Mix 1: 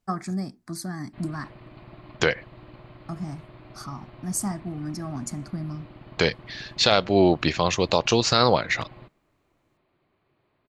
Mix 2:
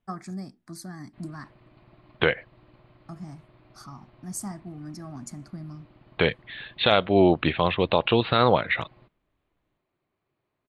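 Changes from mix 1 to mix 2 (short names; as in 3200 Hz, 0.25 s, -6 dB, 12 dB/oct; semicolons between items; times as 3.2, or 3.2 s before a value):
first voice -6.5 dB; second voice: add steep low-pass 3800 Hz 96 dB/oct; background -9.5 dB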